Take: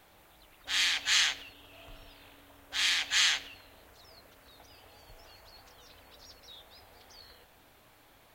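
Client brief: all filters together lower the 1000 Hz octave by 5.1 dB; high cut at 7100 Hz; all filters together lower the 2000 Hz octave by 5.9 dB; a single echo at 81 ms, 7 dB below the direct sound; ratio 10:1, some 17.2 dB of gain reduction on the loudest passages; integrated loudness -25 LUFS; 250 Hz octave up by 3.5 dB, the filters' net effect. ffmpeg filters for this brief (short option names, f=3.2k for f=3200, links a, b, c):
-af "lowpass=7.1k,equalizer=f=250:t=o:g=4.5,equalizer=f=1k:t=o:g=-5,equalizer=f=2k:t=o:g=-6,acompressor=threshold=-42dB:ratio=10,aecho=1:1:81:0.447,volume=23dB"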